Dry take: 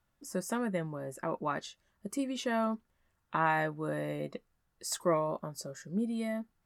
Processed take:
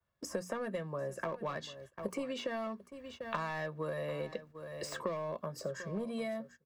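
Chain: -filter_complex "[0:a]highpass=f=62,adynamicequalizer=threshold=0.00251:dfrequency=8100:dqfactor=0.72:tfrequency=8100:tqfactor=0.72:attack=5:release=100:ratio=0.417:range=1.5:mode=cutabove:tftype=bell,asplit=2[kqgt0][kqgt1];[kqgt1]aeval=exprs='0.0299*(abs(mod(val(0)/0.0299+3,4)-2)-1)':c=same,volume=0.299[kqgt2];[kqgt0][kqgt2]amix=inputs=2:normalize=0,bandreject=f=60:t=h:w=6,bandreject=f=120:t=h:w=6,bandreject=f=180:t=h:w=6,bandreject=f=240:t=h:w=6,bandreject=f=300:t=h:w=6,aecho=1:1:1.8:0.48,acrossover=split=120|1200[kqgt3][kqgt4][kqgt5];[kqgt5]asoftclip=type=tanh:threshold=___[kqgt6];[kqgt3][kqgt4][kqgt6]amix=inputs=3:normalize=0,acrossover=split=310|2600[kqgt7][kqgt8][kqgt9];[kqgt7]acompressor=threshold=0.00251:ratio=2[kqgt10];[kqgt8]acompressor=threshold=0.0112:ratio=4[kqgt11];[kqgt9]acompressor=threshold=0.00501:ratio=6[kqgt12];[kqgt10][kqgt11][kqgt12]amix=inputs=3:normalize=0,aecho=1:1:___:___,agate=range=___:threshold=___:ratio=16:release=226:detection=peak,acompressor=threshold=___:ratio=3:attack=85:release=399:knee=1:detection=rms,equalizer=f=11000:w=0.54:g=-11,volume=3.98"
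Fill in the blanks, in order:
0.0316, 743, 0.15, 0.112, 0.00126, 0.00251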